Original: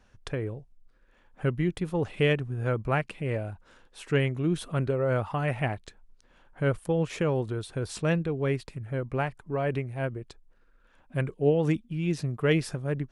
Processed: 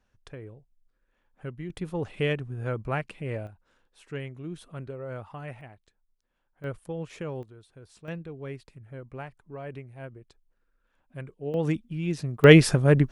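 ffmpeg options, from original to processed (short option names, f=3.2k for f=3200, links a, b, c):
-af "asetnsamples=n=441:p=0,asendcmd='1.7 volume volume -3dB;3.47 volume volume -11dB;5.61 volume volume -18.5dB;6.64 volume volume -8.5dB;7.43 volume volume -18dB;8.08 volume volume -10.5dB;11.54 volume volume -1dB;12.44 volume volume 11dB',volume=-10.5dB"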